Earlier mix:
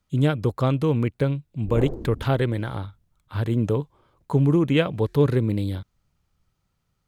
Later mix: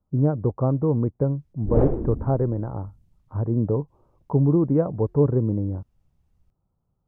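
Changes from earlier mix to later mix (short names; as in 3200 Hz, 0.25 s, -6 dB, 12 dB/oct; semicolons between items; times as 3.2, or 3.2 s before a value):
speech: add inverse Chebyshev low-pass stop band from 3300 Hz, stop band 60 dB; background +7.5 dB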